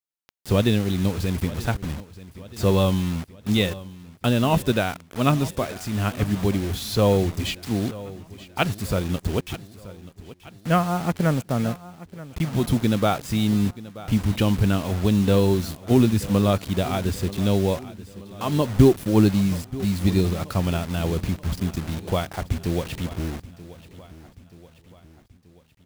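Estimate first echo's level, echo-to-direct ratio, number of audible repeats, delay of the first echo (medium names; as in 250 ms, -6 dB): -17.5 dB, -16.0 dB, 4, 931 ms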